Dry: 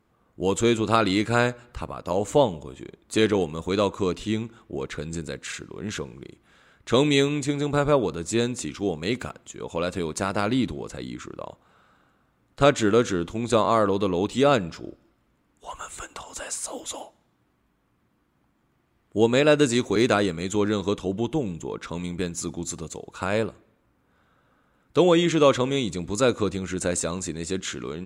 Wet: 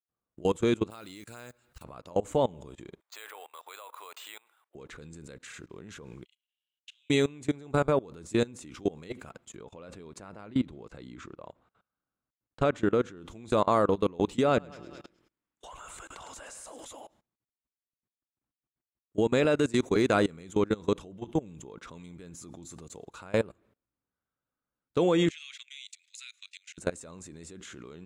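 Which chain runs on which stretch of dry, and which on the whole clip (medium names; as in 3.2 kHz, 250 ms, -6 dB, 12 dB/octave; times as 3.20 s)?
0.90–1.84 s: block-companded coder 7-bit + pre-emphasis filter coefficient 0.8 + upward compressor, threshold -44 dBFS
3.00–4.75 s: high-pass 740 Hz 24 dB/octave + careless resampling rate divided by 4×, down filtered, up hold
6.25–7.10 s: compression 3:1, threshold -38 dBFS + ladder high-pass 2.8 kHz, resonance 85% + flutter echo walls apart 6.4 m, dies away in 0.36 s
9.56–13.17 s: treble shelf 5.6 kHz -12 dB + tremolo saw down 6 Hz, depth 30%
14.45–16.85 s: treble shelf 8.8 kHz -7 dB + feedback delay 105 ms, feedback 50%, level -12.5 dB + tape noise reduction on one side only encoder only
25.30–26.78 s: steep high-pass 2.2 kHz + treble shelf 8.2 kHz -12 dB
whole clip: expander -52 dBFS; dynamic bell 4.6 kHz, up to -5 dB, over -43 dBFS, Q 0.82; level held to a coarse grid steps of 23 dB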